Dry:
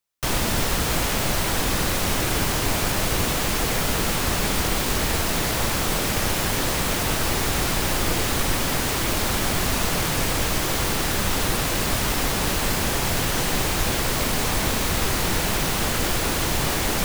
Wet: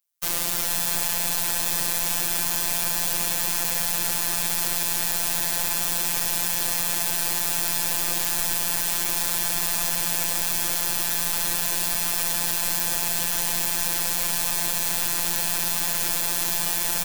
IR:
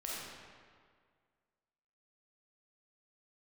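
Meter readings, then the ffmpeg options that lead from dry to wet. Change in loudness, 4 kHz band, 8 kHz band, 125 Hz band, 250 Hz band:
+0.5 dB, -3.0 dB, +2.0 dB, -14.0 dB, -12.0 dB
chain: -filter_complex "[0:a]lowshelf=f=350:g=-7,crystalizer=i=2:c=0,afftfilt=real='hypot(re,im)*cos(PI*b)':imag='0':win_size=1024:overlap=0.75,asplit=2[a][b];[b]aecho=0:1:440:0.447[c];[a][c]amix=inputs=2:normalize=0,volume=-4.5dB"

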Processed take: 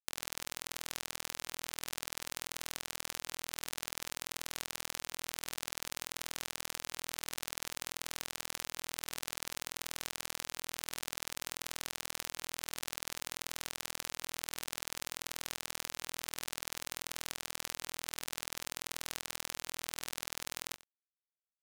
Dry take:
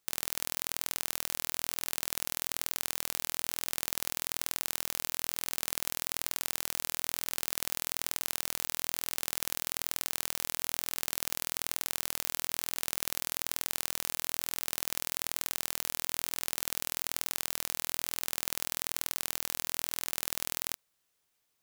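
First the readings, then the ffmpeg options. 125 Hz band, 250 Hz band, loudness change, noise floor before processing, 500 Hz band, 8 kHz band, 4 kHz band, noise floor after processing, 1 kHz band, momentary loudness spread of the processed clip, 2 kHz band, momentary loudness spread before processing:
-4.5 dB, -4.0 dB, -7.0 dB, -78 dBFS, -4.0 dB, -5.5 dB, -3.5 dB, -68 dBFS, -3.0 dB, 1 LU, -3.0 dB, 0 LU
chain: -af "afftfilt=real='re*gte(hypot(re,im),0.00631)':imag='im*gte(hypot(re,im),0.00631)':win_size=1024:overlap=0.75,lowshelf=f=130:g=-10,adynamicsmooth=sensitivity=1.5:basefreq=2.7k,aeval=exprs='sgn(val(0))*max(abs(val(0))-0.0075,0)':c=same,aecho=1:1:91:0.112,volume=4dB"

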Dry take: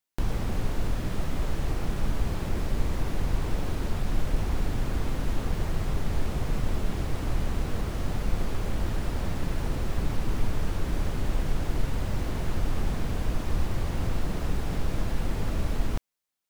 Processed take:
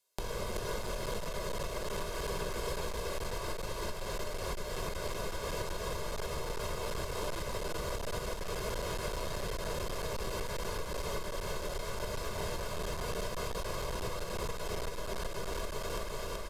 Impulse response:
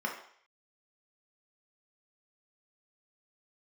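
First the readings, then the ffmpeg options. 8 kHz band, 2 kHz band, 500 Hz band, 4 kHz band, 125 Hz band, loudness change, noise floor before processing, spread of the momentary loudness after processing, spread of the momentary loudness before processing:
+2.5 dB, -1.0 dB, +1.0 dB, +1.5 dB, -12.5 dB, -6.5 dB, -33 dBFS, 2 LU, 1 LU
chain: -filter_complex "[0:a]acrossover=split=390|810[a][b][c];[a]acompressor=threshold=-32dB:ratio=4[d];[b]acompressor=threshold=-57dB:ratio=4[e];[c]acompressor=threshold=-46dB:ratio=4[f];[d][e][f]amix=inputs=3:normalize=0,equalizer=f=440:t=o:w=1.1:g=5.5,aecho=1:1:1.9:0.71,aecho=1:1:379|758|1137|1516|1895|2274|2653|3032:0.708|0.404|0.23|0.131|0.0747|0.0426|0.0243|0.0138,asplit=2[g][h];[1:a]atrim=start_sample=2205[i];[h][i]afir=irnorm=-1:irlink=0,volume=-8dB[j];[g][j]amix=inputs=2:normalize=0,aeval=exprs='clip(val(0),-1,0.075)':c=same,acompressor=threshold=-27dB:ratio=6,aresample=32000,aresample=44100,bass=f=250:g=-14,treble=f=4k:g=4,volume=5.5dB"

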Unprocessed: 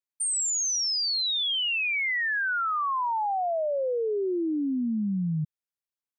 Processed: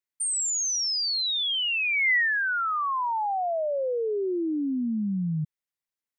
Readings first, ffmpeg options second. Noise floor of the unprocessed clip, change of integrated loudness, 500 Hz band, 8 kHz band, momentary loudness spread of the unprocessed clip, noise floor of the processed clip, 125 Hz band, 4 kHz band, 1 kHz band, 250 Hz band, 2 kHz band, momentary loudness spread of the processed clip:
under -85 dBFS, +1.0 dB, 0.0 dB, 0.0 dB, 4 LU, under -85 dBFS, 0.0 dB, 0.0 dB, 0.0 dB, 0.0 dB, +3.0 dB, 7 LU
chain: -af "equalizer=f=2k:w=4.6:g=6"

